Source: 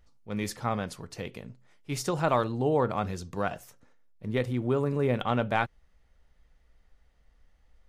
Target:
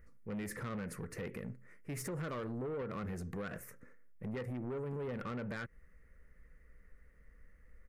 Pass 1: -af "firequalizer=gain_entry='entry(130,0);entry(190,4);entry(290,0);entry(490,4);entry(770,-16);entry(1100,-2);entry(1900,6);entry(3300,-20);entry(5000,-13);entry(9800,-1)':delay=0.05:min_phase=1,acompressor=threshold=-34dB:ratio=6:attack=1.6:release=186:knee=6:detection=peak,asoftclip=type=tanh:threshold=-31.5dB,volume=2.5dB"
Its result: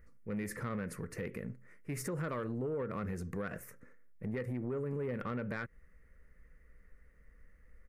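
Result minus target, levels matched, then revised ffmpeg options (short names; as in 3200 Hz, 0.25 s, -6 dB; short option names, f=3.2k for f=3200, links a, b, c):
soft clip: distortion -8 dB
-af "firequalizer=gain_entry='entry(130,0);entry(190,4);entry(290,0);entry(490,4);entry(770,-16);entry(1100,-2);entry(1900,6);entry(3300,-20);entry(5000,-13);entry(9800,-1)':delay=0.05:min_phase=1,acompressor=threshold=-34dB:ratio=6:attack=1.6:release=186:knee=6:detection=peak,asoftclip=type=tanh:threshold=-38dB,volume=2.5dB"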